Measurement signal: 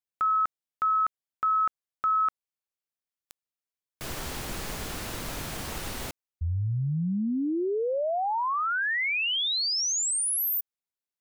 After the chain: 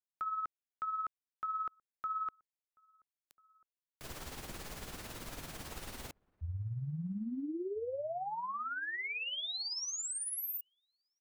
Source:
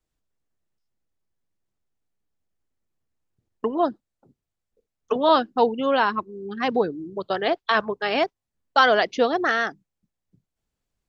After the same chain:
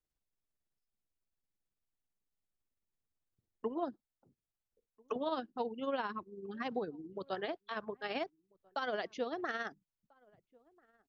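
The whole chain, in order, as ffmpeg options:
ffmpeg -i in.wav -filter_complex "[0:a]acrossover=split=490[link_01][link_02];[link_02]acompressor=threshold=-28dB:ratio=2:attack=12:release=26:knee=2.83:detection=peak[link_03];[link_01][link_03]amix=inputs=2:normalize=0,alimiter=limit=-16dB:level=0:latency=1:release=489,tremolo=f=18:d=0.51,asplit=2[link_04][link_05];[link_05]adelay=1341,volume=-28dB,highshelf=frequency=4000:gain=-30.2[link_06];[link_04][link_06]amix=inputs=2:normalize=0,volume=-8.5dB" out.wav

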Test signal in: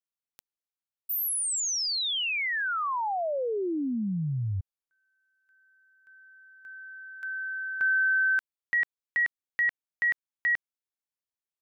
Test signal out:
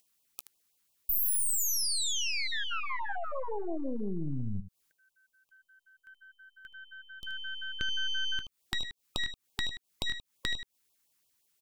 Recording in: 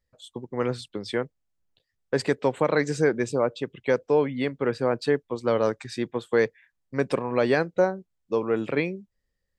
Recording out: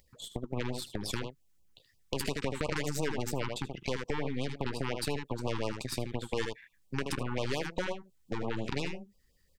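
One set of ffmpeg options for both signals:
ffmpeg -i in.wav -filter_complex "[0:a]aeval=exprs='0.355*(cos(1*acos(clip(val(0)/0.355,-1,1)))-cos(1*PI/2))+0.0794*(cos(3*acos(clip(val(0)/0.355,-1,1)))-cos(3*PI/2))+0.00282*(cos(7*acos(clip(val(0)/0.355,-1,1)))-cos(7*PI/2))+0.0355*(cos(8*acos(clip(val(0)/0.355,-1,1)))-cos(8*PI/2))':channel_layout=same,acompressor=mode=upward:threshold=-30dB:ratio=1.5:attack=87:release=83:knee=2.83:detection=peak,asplit=2[link_01][link_02];[link_02]aecho=0:1:15|77:0.126|0.237[link_03];[link_01][link_03]amix=inputs=2:normalize=0,acompressor=threshold=-27dB:ratio=6:attack=5.1:release=57:knee=1:detection=rms,highshelf=frequency=5500:gain=6,afftfilt=real='re*(1-between(b*sr/1024,530*pow(1800/530,0.5+0.5*sin(2*PI*5.7*pts/sr))/1.41,530*pow(1800/530,0.5+0.5*sin(2*PI*5.7*pts/sr))*1.41))':imag='im*(1-between(b*sr/1024,530*pow(1800/530,0.5+0.5*sin(2*PI*5.7*pts/sr))/1.41,530*pow(1800/530,0.5+0.5*sin(2*PI*5.7*pts/sr))*1.41))':win_size=1024:overlap=0.75" out.wav

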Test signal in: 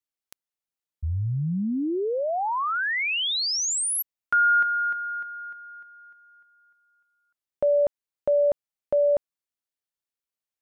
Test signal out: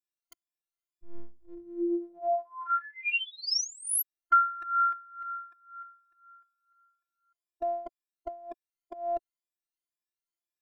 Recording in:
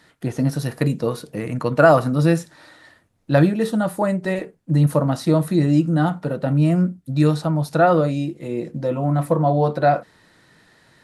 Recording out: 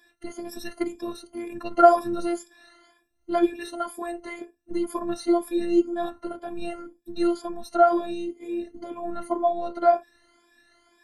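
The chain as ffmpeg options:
ffmpeg -i in.wav -af "afftfilt=real='re*pow(10,24/40*sin(2*PI*(1.8*log(max(b,1)*sr/1024/100)/log(2)-(2)*(pts-256)/sr)))':imag='im*pow(10,24/40*sin(2*PI*(1.8*log(max(b,1)*sr/1024/100)/log(2)-(2)*(pts-256)/sr)))':win_size=1024:overlap=0.75,afftfilt=real='hypot(re,im)*cos(PI*b)':imag='0':win_size=512:overlap=0.75,volume=-8.5dB" out.wav

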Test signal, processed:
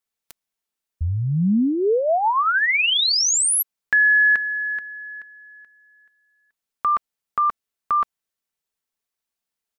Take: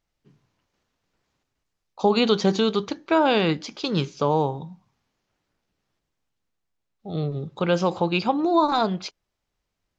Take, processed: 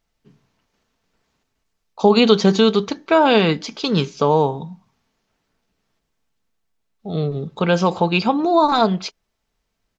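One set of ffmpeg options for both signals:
ffmpeg -i in.wav -af "aecho=1:1:4.5:0.31,volume=5dB" out.wav

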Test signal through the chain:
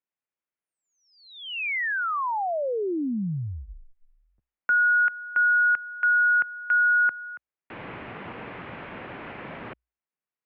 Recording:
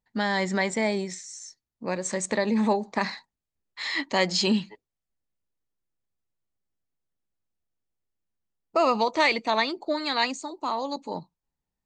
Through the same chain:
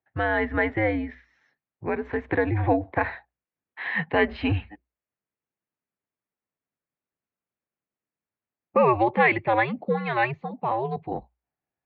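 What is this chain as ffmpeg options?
ffmpeg -i in.wav -af "bandreject=frequency=60:width_type=h:width=6,bandreject=frequency=120:width_type=h:width=6,bandreject=frequency=180:width_type=h:width=6,highpass=frequency=240:width_type=q:width=0.5412,highpass=frequency=240:width_type=q:width=1.307,lowpass=frequency=2700:width_type=q:width=0.5176,lowpass=frequency=2700:width_type=q:width=0.7071,lowpass=frequency=2700:width_type=q:width=1.932,afreqshift=-120,volume=3dB" out.wav

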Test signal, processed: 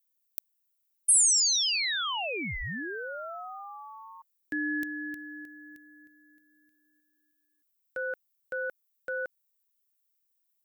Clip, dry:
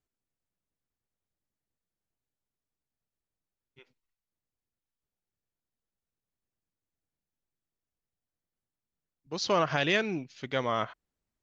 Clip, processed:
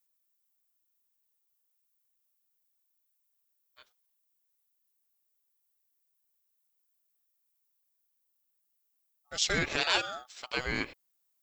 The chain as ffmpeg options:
ffmpeg -i in.wav -af "aemphasis=mode=production:type=riaa,aeval=exprs='val(0)*sin(2*PI*1000*n/s)':channel_layout=same" out.wav

